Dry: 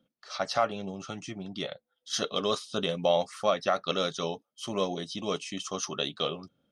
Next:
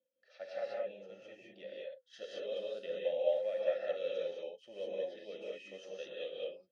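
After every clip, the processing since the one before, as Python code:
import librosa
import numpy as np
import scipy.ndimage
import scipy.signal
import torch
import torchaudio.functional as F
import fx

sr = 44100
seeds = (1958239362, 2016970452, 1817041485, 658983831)

y = fx.vowel_filter(x, sr, vowel='e')
y = fx.rev_gated(y, sr, seeds[0], gate_ms=230, shape='rising', drr_db=-4.0)
y = y * 10.0 ** (-6.5 / 20.0)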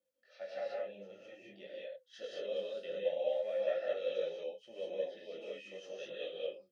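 y = fx.detune_double(x, sr, cents=17)
y = y * 10.0 ** (4.0 / 20.0)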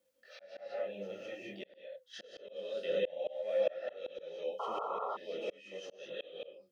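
y = fx.auto_swell(x, sr, attack_ms=524.0)
y = fx.spec_paint(y, sr, seeds[1], shape='noise', start_s=4.59, length_s=0.58, low_hz=400.0, high_hz=1400.0, level_db=-47.0)
y = y * 10.0 ** (9.0 / 20.0)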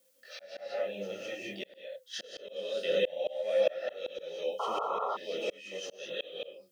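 y = fx.high_shelf(x, sr, hz=3800.0, db=11.5)
y = y * 10.0 ** (4.0 / 20.0)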